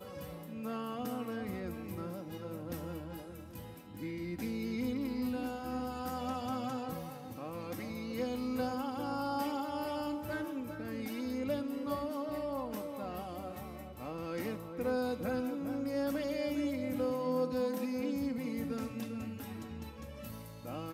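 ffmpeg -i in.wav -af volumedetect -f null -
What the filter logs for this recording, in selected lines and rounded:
mean_volume: -37.6 dB
max_volume: -22.7 dB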